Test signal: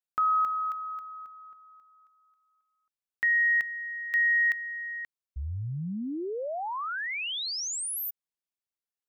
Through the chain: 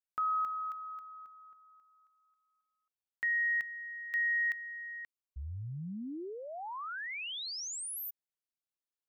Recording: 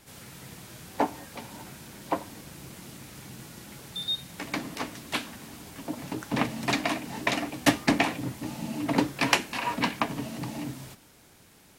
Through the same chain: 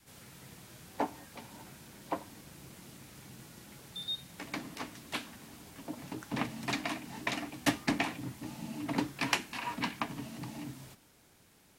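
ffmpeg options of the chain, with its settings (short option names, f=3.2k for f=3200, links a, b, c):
-af "adynamicequalizer=threshold=0.00447:dfrequency=530:dqfactor=1.9:tfrequency=530:tqfactor=1.9:attack=5:release=100:ratio=0.375:range=3:mode=cutabove:tftype=bell,volume=-7dB"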